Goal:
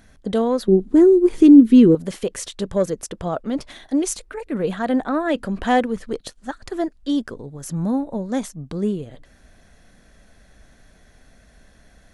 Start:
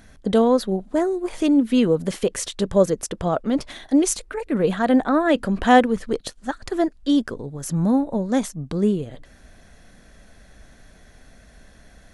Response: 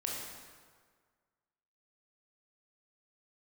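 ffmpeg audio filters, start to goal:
-filter_complex "[0:a]aeval=exprs='0.841*(cos(1*acos(clip(val(0)/0.841,-1,1)))-cos(1*PI/2))+0.0531*(cos(3*acos(clip(val(0)/0.841,-1,1)))-cos(3*PI/2))+0.00944*(cos(7*acos(clip(val(0)/0.841,-1,1)))-cos(7*PI/2))':c=same,acontrast=79,asettb=1/sr,asplit=3[a][b][c];[a]atrim=end=0.684[d];[b]atrim=start=0.68:end=1.95,asetpts=PTS-STARTPTS,afade=t=in:d=0.004:c=qsin,afade=t=out:st=1.266:d=0.004:c=qsin,lowshelf=f=480:t=q:w=3:g=8[e];[c]atrim=start=1.946[f];[d][e]acrossfade=d=0.004:c1=hsin:c2=qsin[g];[g][f]acrossfade=d=0.004:c1=qsin:c2=hsin,volume=-7dB"

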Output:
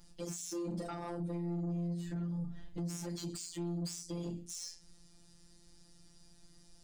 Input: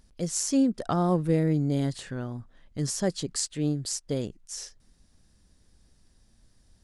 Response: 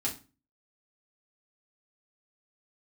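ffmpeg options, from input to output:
-filter_complex "[0:a]asettb=1/sr,asplit=3[a][b][c];[a]atrim=end=1.694[d];[b]atrim=start=1.69:end=2.91,asetpts=PTS-STARTPTS,afade=t=in:d=0.004:c=qsin,afade=t=out:st=1.216:d=0.004:c=qsin,lowshelf=f=260:g=10.5[e];[c]atrim=start=2.906[f];[d][e]acrossfade=d=0.004:c1=hsin:c2=qsin[g];[g][f]acrossfade=d=0.004:c1=qsin:c2=hsin[h];[1:a]atrim=start_sample=2205[i];[h][i]afir=irnorm=-1:irlink=0,afftfilt=real='hypot(re,im)*cos(PI*b)':imag='0':win_size=1024:overlap=0.75,acompressor=threshold=-27dB:ratio=12,alimiter=level_in=2dB:limit=-24dB:level=0:latency=1:release=282,volume=-2dB,highshelf=f=4.4k:g=4.5,asoftclip=type=tanh:threshold=-33.5dB,volume=1dB"

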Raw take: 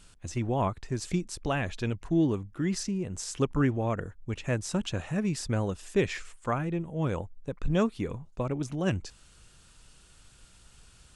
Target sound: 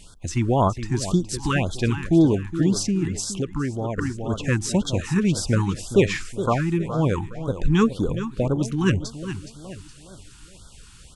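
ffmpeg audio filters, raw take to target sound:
-filter_complex "[0:a]aecho=1:1:417|834|1251|1668:0.282|0.116|0.0474|0.0194,asettb=1/sr,asplit=3[a][b][c];[a]atrim=end=3.204[d];[b]atrim=start=3.2:end=3.98,asetpts=PTS-STARTPTS,afade=t=in:d=0.004:c=qsin,afade=t=out:st=0.776:d=0.004:c=qsin,acompressor=threshold=-34dB:ratio=3[e];[c]atrim=start=3.976[f];[d][e]acrossfade=d=0.004:c1=hsin:c2=qsin[g];[g][f]acrossfade=d=0.004:c1=qsin:c2=hsin,afftfilt=real='re*(1-between(b*sr/1024,520*pow(2300/520,0.5+0.5*sin(2*PI*1.9*pts/sr))/1.41,520*pow(2300/520,0.5+0.5*sin(2*PI*1.9*pts/sr))*1.41))':imag='im*(1-between(b*sr/1024,520*pow(2300/520,0.5+0.5*sin(2*PI*1.9*pts/sr))/1.41,520*pow(2300/520,0.5+0.5*sin(2*PI*1.9*pts/sr))*1.41))':win_size=1024:overlap=0.75,volume=8.5dB"

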